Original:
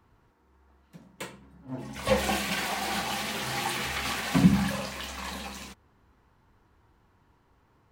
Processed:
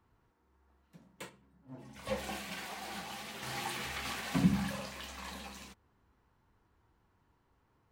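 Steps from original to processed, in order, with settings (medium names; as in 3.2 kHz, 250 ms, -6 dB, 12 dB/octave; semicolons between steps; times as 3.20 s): 1.29–3.43 s: flange 2 Hz, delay 5.6 ms, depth 5.9 ms, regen +82%; trim -8 dB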